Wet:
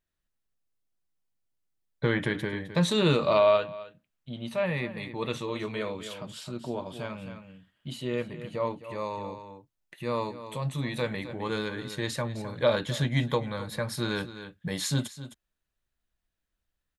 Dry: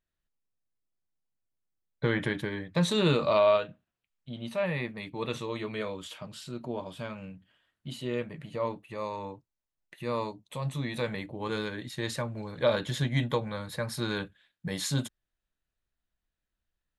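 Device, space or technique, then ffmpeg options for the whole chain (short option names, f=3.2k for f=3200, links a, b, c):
ducked delay: -filter_complex "[0:a]asplit=3[a][b][c];[b]adelay=260,volume=-8.5dB[d];[c]apad=whole_len=760369[e];[d][e]sidechaincompress=threshold=-34dB:ratio=8:attack=29:release=647[f];[a][f]amix=inputs=2:normalize=0,volume=1.5dB"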